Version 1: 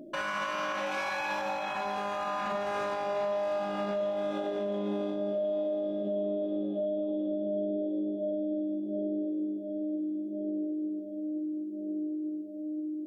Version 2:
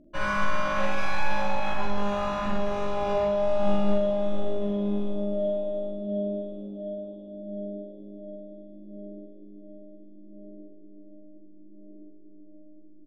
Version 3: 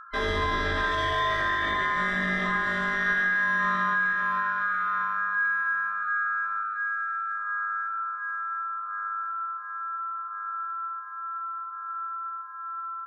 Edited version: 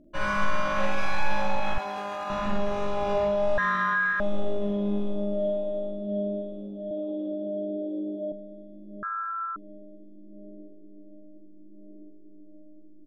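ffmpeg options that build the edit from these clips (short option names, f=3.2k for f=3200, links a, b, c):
-filter_complex "[0:a]asplit=2[a][b];[2:a]asplit=2[c][d];[1:a]asplit=5[e][f][g][h][i];[e]atrim=end=1.782[j];[a]atrim=start=1.778:end=2.302[k];[f]atrim=start=2.298:end=3.582[l];[c]atrim=start=3.578:end=4.202[m];[g]atrim=start=4.198:end=6.912[n];[b]atrim=start=6.908:end=8.322[o];[h]atrim=start=8.318:end=9.032[p];[d]atrim=start=9.028:end=9.562[q];[i]atrim=start=9.558[r];[j][k]acrossfade=d=0.004:c1=hsin:c2=hsin[s];[s][l]acrossfade=d=0.004:c1=hsin:c2=hsin[t];[t][m]acrossfade=d=0.004:c1=hsin:c2=hsin[u];[u][n]acrossfade=d=0.004:c1=hsin:c2=hsin[v];[v][o]acrossfade=d=0.004:c1=hsin:c2=hsin[w];[w][p]acrossfade=d=0.004:c1=hsin:c2=hsin[x];[x][q]acrossfade=d=0.004:c1=hsin:c2=hsin[y];[y][r]acrossfade=d=0.004:c1=hsin:c2=hsin"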